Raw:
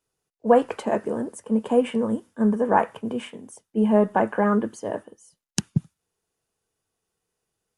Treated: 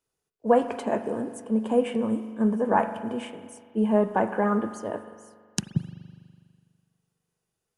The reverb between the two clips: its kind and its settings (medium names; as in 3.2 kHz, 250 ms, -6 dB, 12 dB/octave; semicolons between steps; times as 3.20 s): spring tank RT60 1.9 s, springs 41 ms, chirp 75 ms, DRR 10.5 dB; trim -3 dB